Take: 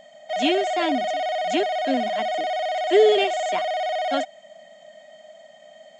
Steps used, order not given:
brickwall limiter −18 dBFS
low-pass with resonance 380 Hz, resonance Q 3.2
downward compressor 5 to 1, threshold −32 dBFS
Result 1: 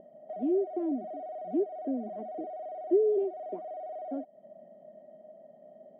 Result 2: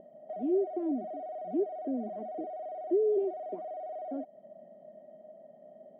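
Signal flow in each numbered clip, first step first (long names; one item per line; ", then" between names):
downward compressor, then brickwall limiter, then low-pass with resonance
brickwall limiter, then downward compressor, then low-pass with resonance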